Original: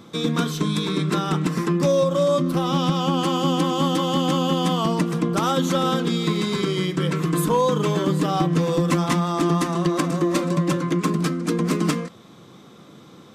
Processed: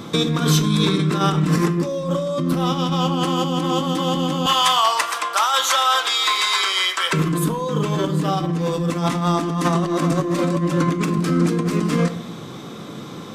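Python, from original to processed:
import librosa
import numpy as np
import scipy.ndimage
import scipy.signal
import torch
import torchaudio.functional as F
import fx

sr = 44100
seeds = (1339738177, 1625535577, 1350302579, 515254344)

y = fx.highpass(x, sr, hz=820.0, slope=24, at=(4.46, 7.13))
y = fx.over_compress(y, sr, threshold_db=-27.0, ratio=-1.0)
y = fx.room_shoebox(y, sr, seeds[0], volume_m3=190.0, walls='mixed', distance_m=0.3)
y = y * 10.0 ** (6.5 / 20.0)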